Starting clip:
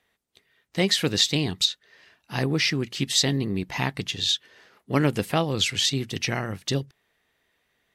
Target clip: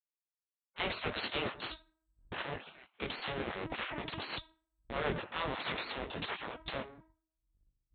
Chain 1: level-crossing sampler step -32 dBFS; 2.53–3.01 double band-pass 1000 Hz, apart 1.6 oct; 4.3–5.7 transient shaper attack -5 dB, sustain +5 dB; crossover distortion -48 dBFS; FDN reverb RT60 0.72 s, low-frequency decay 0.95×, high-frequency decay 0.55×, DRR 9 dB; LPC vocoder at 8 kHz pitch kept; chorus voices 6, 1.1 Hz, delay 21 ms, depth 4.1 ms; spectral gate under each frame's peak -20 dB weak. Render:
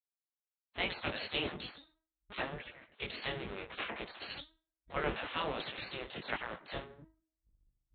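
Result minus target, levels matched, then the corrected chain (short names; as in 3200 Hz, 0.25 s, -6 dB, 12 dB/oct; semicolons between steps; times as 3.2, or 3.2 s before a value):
level-crossing sampler: distortion -11 dB
level-crossing sampler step -21.5 dBFS; 2.53–3.01 double band-pass 1000 Hz, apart 1.6 oct; 4.3–5.7 transient shaper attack -5 dB, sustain +5 dB; crossover distortion -48 dBFS; FDN reverb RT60 0.72 s, low-frequency decay 0.95×, high-frequency decay 0.55×, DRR 9 dB; LPC vocoder at 8 kHz pitch kept; chorus voices 6, 1.1 Hz, delay 21 ms, depth 4.1 ms; spectral gate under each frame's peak -20 dB weak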